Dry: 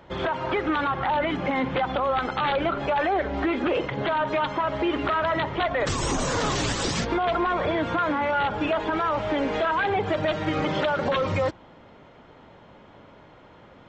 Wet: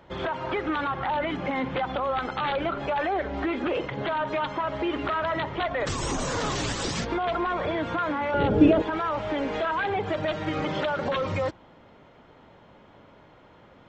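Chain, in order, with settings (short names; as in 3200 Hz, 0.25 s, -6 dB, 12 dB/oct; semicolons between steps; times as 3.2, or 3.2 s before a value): 8.34–8.82 resonant low shelf 630 Hz +12.5 dB, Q 1.5; gain -3 dB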